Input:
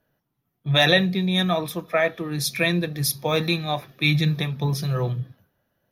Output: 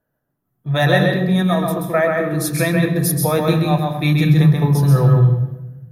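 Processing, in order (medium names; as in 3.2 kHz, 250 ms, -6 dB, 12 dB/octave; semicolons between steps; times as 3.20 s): high-order bell 3.6 kHz -10 dB; level rider gain up to 9.5 dB; on a send: reverberation RT60 0.95 s, pre-delay 132 ms, DRR 1.5 dB; on the sum: trim -3 dB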